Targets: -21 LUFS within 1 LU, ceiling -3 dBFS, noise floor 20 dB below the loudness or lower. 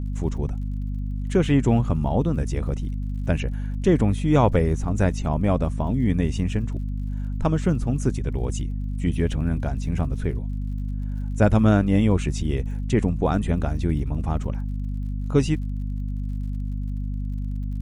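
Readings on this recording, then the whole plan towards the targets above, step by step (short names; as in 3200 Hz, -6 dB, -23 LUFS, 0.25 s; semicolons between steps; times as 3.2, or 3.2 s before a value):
ticks 52/s; hum 50 Hz; harmonics up to 250 Hz; hum level -25 dBFS; loudness -24.5 LUFS; peak -4.0 dBFS; loudness target -21.0 LUFS
-> de-click; notches 50/100/150/200/250 Hz; gain +3.5 dB; limiter -3 dBFS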